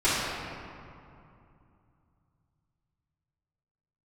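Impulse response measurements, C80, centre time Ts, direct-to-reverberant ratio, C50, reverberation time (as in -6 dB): -1.0 dB, 0.151 s, -14.5 dB, -3.0 dB, 2.6 s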